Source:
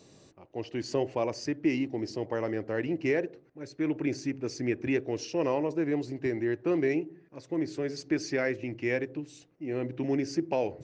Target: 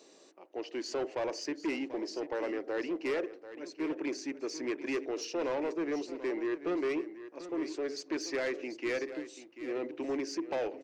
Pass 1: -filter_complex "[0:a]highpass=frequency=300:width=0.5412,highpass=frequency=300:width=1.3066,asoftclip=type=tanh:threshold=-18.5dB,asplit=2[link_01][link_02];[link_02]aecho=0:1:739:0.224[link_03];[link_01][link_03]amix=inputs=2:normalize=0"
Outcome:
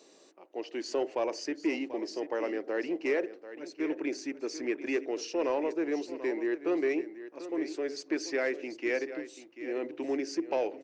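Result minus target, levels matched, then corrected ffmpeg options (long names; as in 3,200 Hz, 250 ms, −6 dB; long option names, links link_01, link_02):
soft clipping: distortion −13 dB
-filter_complex "[0:a]highpass=frequency=300:width=0.5412,highpass=frequency=300:width=1.3066,asoftclip=type=tanh:threshold=-28dB,asplit=2[link_01][link_02];[link_02]aecho=0:1:739:0.224[link_03];[link_01][link_03]amix=inputs=2:normalize=0"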